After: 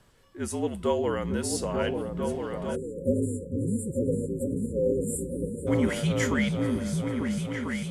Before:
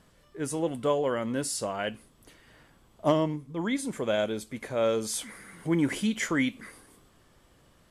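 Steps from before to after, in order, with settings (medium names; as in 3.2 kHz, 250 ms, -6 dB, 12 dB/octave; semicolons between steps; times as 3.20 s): delay with an opening low-pass 447 ms, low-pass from 200 Hz, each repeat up 2 oct, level 0 dB; spectral selection erased 2.76–5.67 s, 620–7100 Hz; frequency shift -52 Hz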